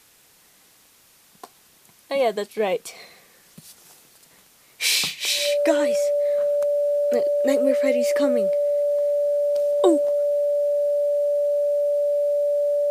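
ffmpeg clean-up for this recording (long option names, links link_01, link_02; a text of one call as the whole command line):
ffmpeg -i in.wav -af "bandreject=frequency=580:width=30,agate=range=-21dB:threshold=-47dB" out.wav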